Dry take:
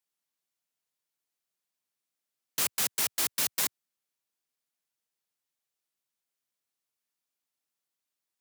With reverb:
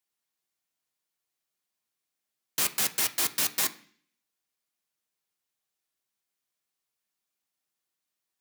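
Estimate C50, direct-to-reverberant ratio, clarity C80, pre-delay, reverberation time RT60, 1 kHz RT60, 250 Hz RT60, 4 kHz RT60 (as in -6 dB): 16.0 dB, 6.5 dB, 20.0 dB, 3 ms, 0.50 s, 0.45 s, 0.65 s, 0.60 s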